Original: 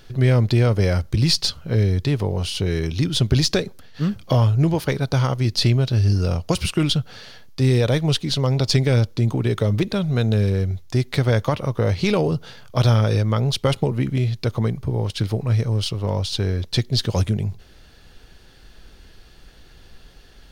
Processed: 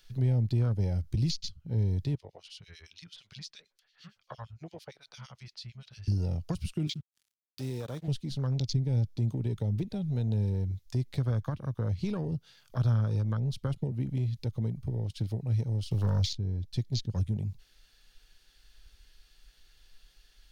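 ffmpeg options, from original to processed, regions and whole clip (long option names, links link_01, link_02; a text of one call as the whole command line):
ffmpeg -i in.wav -filter_complex "[0:a]asettb=1/sr,asplit=3[link_01][link_02][link_03];[link_01]atrim=end=2.154[link_04];[link_02]atrim=start=2.15:end=6.08,asetpts=PTS-STARTPTS,afade=type=in:duration=0.004:curve=qsin,afade=type=out:start_time=3.926:duration=0.004:curve=qsin,acrossover=split=560 7000:gain=0.158 1 0.158[link_05][link_06][link_07];[link_05][link_06][link_07]amix=inputs=3:normalize=0,acrossover=split=2100[link_08][link_09];[link_08]aeval=exprs='val(0)*(1-1/2+1/2*cos(2*PI*8.8*n/s))':channel_layout=same[link_10];[link_09]aeval=exprs='val(0)*(1-1/2-1/2*cos(2*PI*8.8*n/s))':channel_layout=same[link_11];[link_10][link_11]amix=inputs=2:normalize=0[link_12];[link_03]atrim=start=6.076[link_13];[link_04][link_12]acrossfade=duration=0.004:curve1=hsin:curve2=qsin[link_14];[link_14][link_13]acrossfade=duration=0.004:curve1=qsin:curve2=hsin,asettb=1/sr,asplit=3[link_15][link_16][link_17];[link_15]atrim=end=6.874[link_18];[link_16]atrim=start=6.87:end=8.08,asetpts=PTS-STARTPTS,afade=type=in:duration=0.004:curve=qsin,afade=type=out:start_time=1.206:duration=0.004:curve=qsin,highpass=frequency=390:poles=1,acrusher=bits=4:mix=0:aa=0.5[link_19];[link_17]atrim=start=8.076[link_20];[link_18][link_19]acrossfade=duration=0.004:curve1=hsin:curve2=qsin[link_21];[link_21][link_20]acrossfade=duration=0.004:curve1=qsin:curve2=hsin,asettb=1/sr,asplit=3[link_22][link_23][link_24];[link_22]atrim=end=15.914[link_25];[link_23]atrim=start=15.91:end=16.33,asetpts=PTS-STARTPTS,afade=type=in:duration=0.004:curve=qsin,afade=type=out:start_time=0.416:duration=0.004:curve=qsin,highshelf=frequency=3300:gain=10,aeval=exprs='0.299*sin(PI/2*1.58*val(0)/0.299)':channel_layout=same[link_26];[link_24]atrim=start=16.326[link_27];[link_25][link_26]acrossfade=duration=0.004:curve1=hsin:curve2=qsin[link_28];[link_28][link_27]acrossfade=duration=0.004:curve1=qsin:curve2=hsin,afwtdn=0.0562,tiltshelf=frequency=1300:gain=-9,acrossover=split=250[link_29][link_30];[link_30]acompressor=threshold=-48dB:ratio=2.5[link_31];[link_29][link_31]amix=inputs=2:normalize=0" out.wav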